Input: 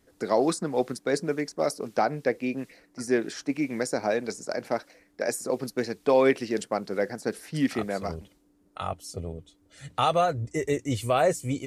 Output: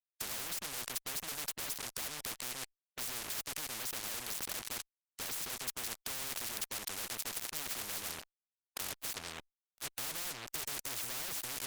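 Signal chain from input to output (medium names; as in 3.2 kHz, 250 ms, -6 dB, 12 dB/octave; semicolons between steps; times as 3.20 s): fuzz box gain 39 dB, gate -41 dBFS; spectrum-flattening compressor 10:1; trim -7 dB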